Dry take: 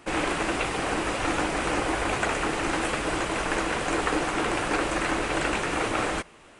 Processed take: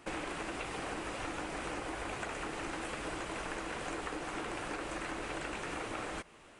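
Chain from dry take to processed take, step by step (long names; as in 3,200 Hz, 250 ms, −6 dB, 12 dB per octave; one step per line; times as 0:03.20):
downward compressor 6 to 1, threshold −31 dBFS, peak gain reduction 10 dB
level −5.5 dB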